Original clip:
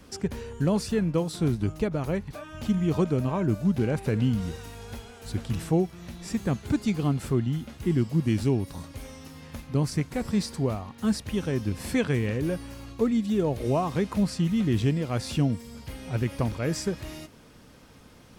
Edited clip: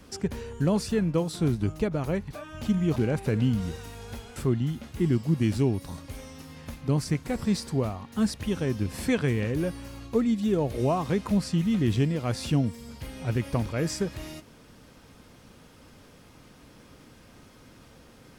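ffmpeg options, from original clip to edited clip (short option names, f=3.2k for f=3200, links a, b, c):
-filter_complex "[0:a]asplit=3[a][b][c];[a]atrim=end=2.962[d];[b]atrim=start=3.758:end=5.162[e];[c]atrim=start=7.218[f];[d][e]acrossfade=d=0.004:c1=hsin:c2=hsin[g];[g][f]acrossfade=d=0.004:c1=hsin:c2=hsin"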